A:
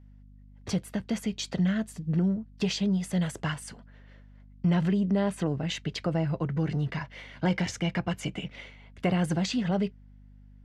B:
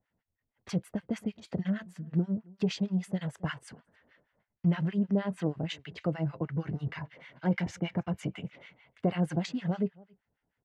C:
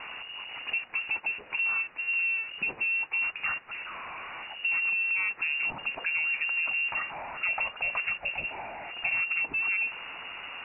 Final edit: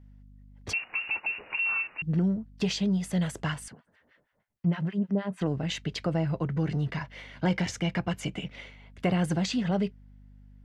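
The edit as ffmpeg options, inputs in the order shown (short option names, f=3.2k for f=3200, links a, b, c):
-filter_complex "[0:a]asplit=3[a][b][c];[a]atrim=end=0.732[d];[2:a]atrim=start=0.728:end=2.022[e];[b]atrim=start=2.018:end=3.682[f];[1:a]atrim=start=3.678:end=5.412[g];[c]atrim=start=5.408[h];[d][e]acrossfade=d=0.004:c1=hsin:c2=hsin[i];[i][f]acrossfade=d=0.004:c1=hsin:c2=hsin[j];[j][g]acrossfade=d=0.004:c1=hsin:c2=hsin[k];[k][h]acrossfade=d=0.004:c1=hsin:c2=hsin"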